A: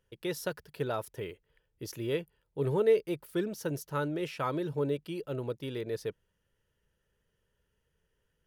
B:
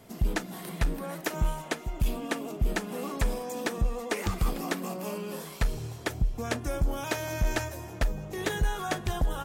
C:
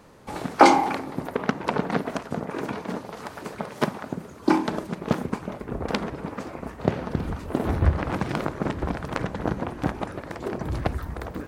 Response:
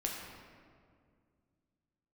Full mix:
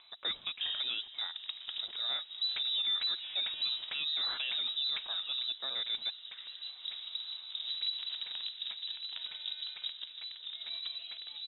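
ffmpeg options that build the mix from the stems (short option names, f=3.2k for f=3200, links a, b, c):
-filter_complex "[0:a]acompressor=mode=upward:threshold=-47dB:ratio=2.5,equalizer=f=5.9k:t=o:w=1:g=13,volume=-0.5dB,asplit=2[a][b];[1:a]adelay=2200,volume=-7.5dB,afade=t=out:st=5:d=0.43:silence=0.237137[c];[2:a]equalizer=f=1.6k:w=1.4:g=-9,volume=-15dB,asplit=2[d][e];[e]volume=-12dB[f];[b]apad=whole_len=505948[g];[d][g]sidechaincompress=threshold=-43dB:ratio=8:attack=31:release=341[h];[3:a]atrim=start_sample=2205[i];[f][i]afir=irnorm=-1:irlink=0[j];[a][c][h][j]amix=inputs=4:normalize=0,lowpass=f=3.4k:t=q:w=0.5098,lowpass=f=3.4k:t=q:w=0.6013,lowpass=f=3.4k:t=q:w=0.9,lowpass=f=3.4k:t=q:w=2.563,afreqshift=-4000,alimiter=level_in=2dB:limit=-24dB:level=0:latency=1:release=58,volume=-2dB"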